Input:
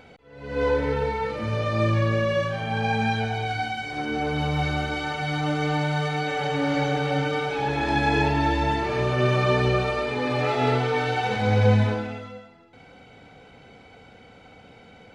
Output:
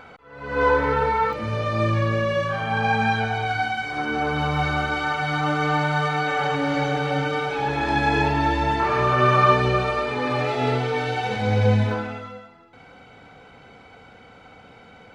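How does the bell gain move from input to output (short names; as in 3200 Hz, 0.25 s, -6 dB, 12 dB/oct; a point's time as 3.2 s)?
bell 1200 Hz 1 oct
+14.5 dB
from 1.33 s +3 dB
from 2.49 s +10.5 dB
from 6.55 s +4.5 dB
from 8.8 s +12.5 dB
from 9.54 s +5.5 dB
from 10.43 s -1.5 dB
from 11.91 s +7 dB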